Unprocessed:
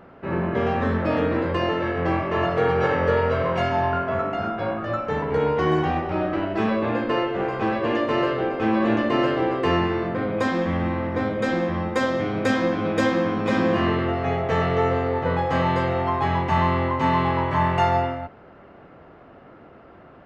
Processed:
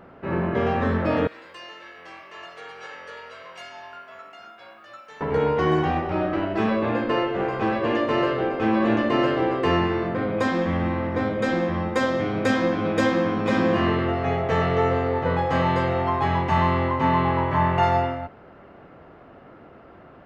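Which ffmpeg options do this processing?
-filter_complex "[0:a]asettb=1/sr,asplit=3[s0][s1][s2];[s0]atrim=end=1.274[s3];[s1]atrim=start=1.27:end=5.21,asetpts=PTS-STARTPTS,afade=t=in:d=0.004:c=qsin,afade=t=out:st=3.936:d=0.004:c=qsin,aderivative[s4];[s2]atrim=start=5.206[s5];[s3][s4]acrossfade=d=0.004:c1=hsin:c2=qsin[s6];[s6][s5]acrossfade=d=0.004:c1=qsin:c2=hsin,asettb=1/sr,asplit=3[s7][s8][s9];[s7]atrim=end=16.994[s10];[s8]atrim=start=16.99:end=17.83,asetpts=PTS-STARTPTS,afade=t=in:d=0.004:c=qsin,afade=t=out:st=0.836:d=0.004:c=qsin,aemphasis=mode=reproduction:type=50fm[s11];[s9]atrim=start=17.826[s12];[s10][s11]acrossfade=d=0.004:c1=hsin:c2=qsin[s13];[s13][s12]acrossfade=d=0.004:c1=qsin:c2=hsin"

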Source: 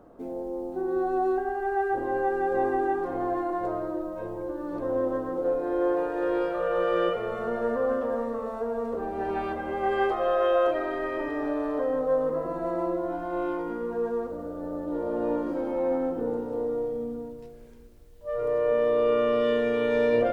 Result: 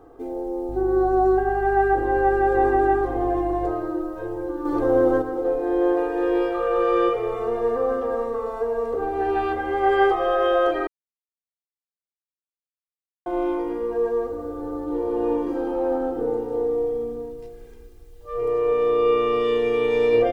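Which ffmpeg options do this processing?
-filter_complex "[0:a]asettb=1/sr,asplit=3[s0][s1][s2];[s0]atrim=end=0.694[s3];[s1]atrim=start=0.69:end=3.71,asetpts=PTS-STARTPTS,afade=t=in:d=0.004:c=qsin,afade=t=out:st=3.016:d=0.004:c=qsin,aeval=exprs='val(0)+0.0126*(sin(2*PI*50*n/s)+sin(2*PI*2*50*n/s)/2+sin(2*PI*3*50*n/s)/3+sin(2*PI*4*50*n/s)/4+sin(2*PI*5*50*n/s)/5)':c=same[s4];[s2]atrim=start=3.706[s5];[s3][s4]acrossfade=d=0.004:c1=hsin:c2=qsin[s6];[s6][s5]acrossfade=d=0.004:c1=qsin:c2=hsin,asettb=1/sr,asplit=3[s7][s8][s9];[s7]atrim=end=4.654[s10];[s8]atrim=start=4.65:end=5.22,asetpts=PTS-STARTPTS,afade=t=in:d=0.004:c=qsin,afade=t=out:st=0.566:d=0.004:c=qsin,acontrast=48[s11];[s9]atrim=start=5.216[s12];[s10][s11]acrossfade=d=0.004:c1=hsin:c2=qsin[s13];[s13][s12]acrossfade=d=0.004:c1=qsin:c2=hsin,asplit=3[s14][s15][s16];[s14]atrim=end=10.87,asetpts=PTS-STARTPTS,afade=t=out:st=10.866:d=0.004:c=hsin[s17];[s15]atrim=start=10.87:end=13.26,asetpts=PTS-STARTPTS,volume=0[s18];[s16]atrim=start=13.26,asetpts=PTS-STARTPTS,afade=t=in:d=0.004:c=hsin[s19];[s17][s18][s19]concat=n=3:v=0:a=1,aecho=1:1:2.5:0.97,volume=1.19"

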